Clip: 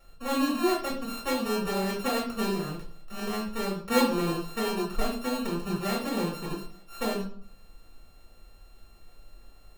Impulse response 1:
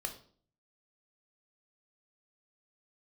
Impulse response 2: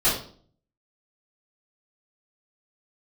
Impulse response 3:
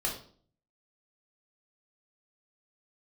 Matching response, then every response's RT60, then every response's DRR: 3; 0.50, 0.50, 0.50 seconds; 4.0, −12.5, −2.5 decibels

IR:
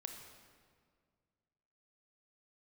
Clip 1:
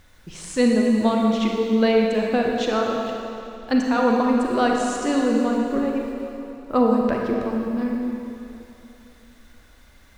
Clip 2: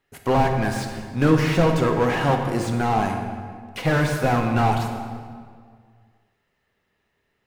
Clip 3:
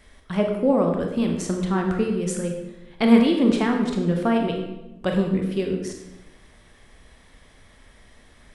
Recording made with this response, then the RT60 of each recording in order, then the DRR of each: 2; 2.9, 1.9, 1.0 seconds; −0.5, 4.0, 2.0 decibels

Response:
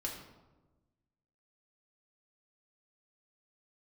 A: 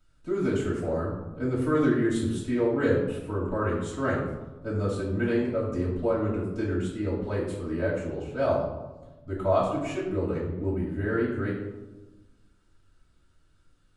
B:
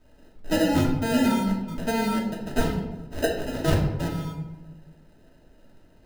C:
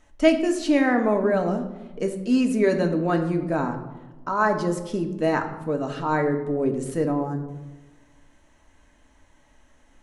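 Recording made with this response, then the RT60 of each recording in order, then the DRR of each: B; 1.2, 1.2, 1.2 seconds; −9.0, −2.5, 4.0 decibels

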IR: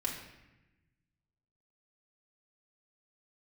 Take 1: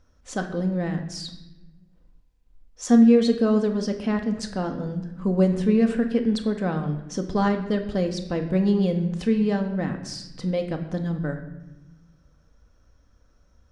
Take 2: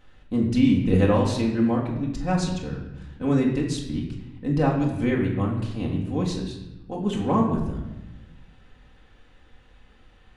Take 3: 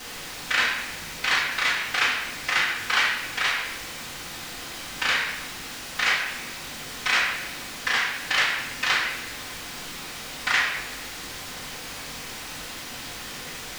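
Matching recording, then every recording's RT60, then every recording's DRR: 2; 1.0, 1.0, 1.0 seconds; 4.0, −3.0, −9.5 decibels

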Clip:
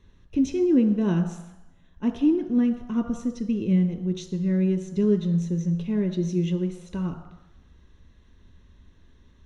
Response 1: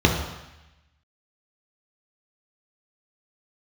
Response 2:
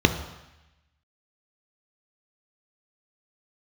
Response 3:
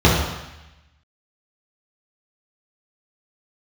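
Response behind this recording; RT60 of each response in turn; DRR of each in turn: 2; 0.95, 0.95, 0.95 seconds; −0.5, 6.5, −7.5 decibels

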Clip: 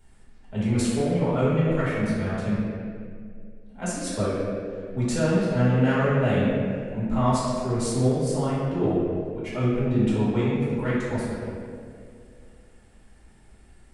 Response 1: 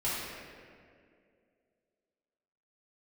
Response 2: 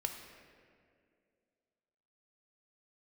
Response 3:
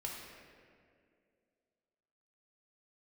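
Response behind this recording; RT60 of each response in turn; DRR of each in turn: 1; 2.3, 2.3, 2.3 seconds; −10.5, 4.0, −2.5 decibels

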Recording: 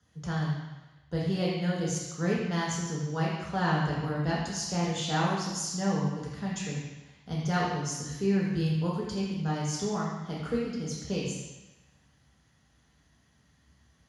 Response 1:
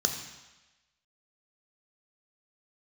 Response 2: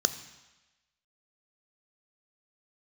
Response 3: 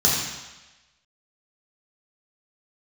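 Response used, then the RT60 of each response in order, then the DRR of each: 3; 1.1, 1.1, 1.1 seconds; 4.0, 10.5, −5.5 decibels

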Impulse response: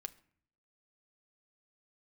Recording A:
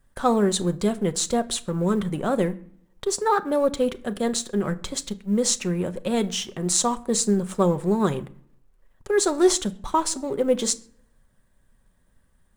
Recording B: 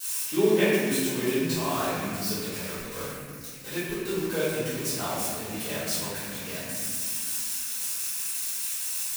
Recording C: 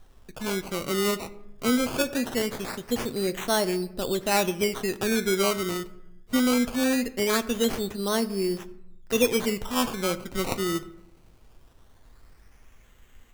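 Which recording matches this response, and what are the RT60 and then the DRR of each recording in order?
A; 0.55, 1.9, 0.85 seconds; 9.5, −16.0, 10.0 decibels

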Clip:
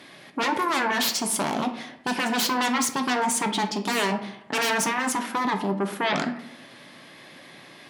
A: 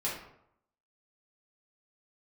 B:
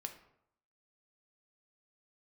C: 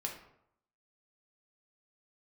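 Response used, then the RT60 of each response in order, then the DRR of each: B; 0.75, 0.75, 0.75 seconds; −7.5, 5.5, 0.0 decibels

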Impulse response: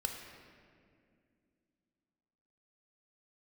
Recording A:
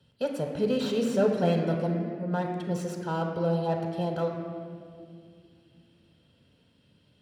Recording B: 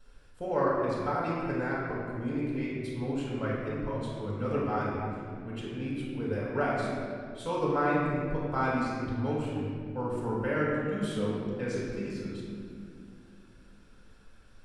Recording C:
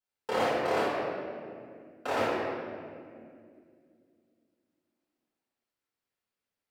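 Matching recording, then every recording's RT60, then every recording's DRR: A; 2.3, 2.3, 2.3 seconds; 2.0, −6.5, −11.5 decibels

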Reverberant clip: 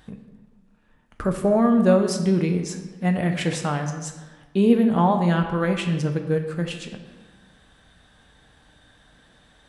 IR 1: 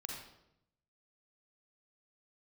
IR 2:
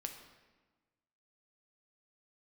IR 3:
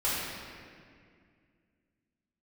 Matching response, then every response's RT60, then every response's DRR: 2; 0.80, 1.3, 2.1 seconds; −1.0, 4.0, −10.5 decibels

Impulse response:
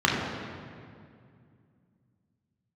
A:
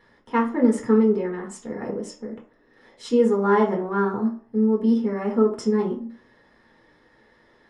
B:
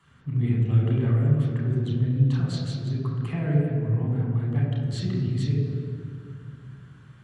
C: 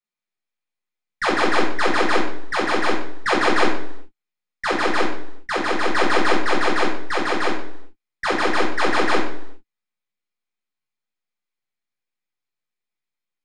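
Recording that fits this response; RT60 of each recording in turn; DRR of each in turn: B; 0.55, 2.3, 0.75 seconds; −2.0, −4.0, −7.5 decibels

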